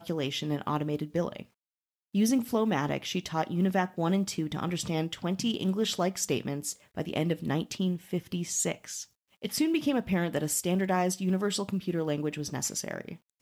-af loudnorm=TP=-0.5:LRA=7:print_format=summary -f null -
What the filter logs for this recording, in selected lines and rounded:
Input Integrated:    -30.3 LUFS
Input True Peak:     -15.3 dBTP
Input LRA:             1.6 LU
Input Threshold:     -40.5 LUFS